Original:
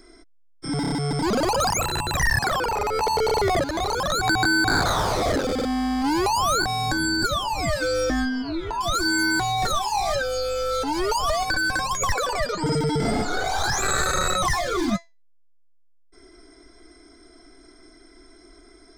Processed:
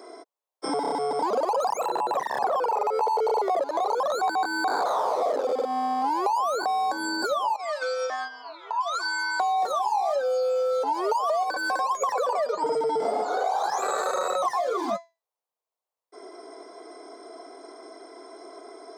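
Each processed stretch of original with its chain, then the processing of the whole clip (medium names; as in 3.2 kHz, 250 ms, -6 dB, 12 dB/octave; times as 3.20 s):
1.88–2.56 s: tilt shelf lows +6 dB, about 1.2 kHz + overload inside the chain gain 15.5 dB
7.56–9.40 s: high-pass 1.2 kHz + gate -33 dBFS, range -8 dB + distance through air 71 m
whole clip: high-pass 250 Hz 24 dB/octave; high-order bell 700 Hz +15 dB; compression 4:1, threshold -27 dBFS; trim +1 dB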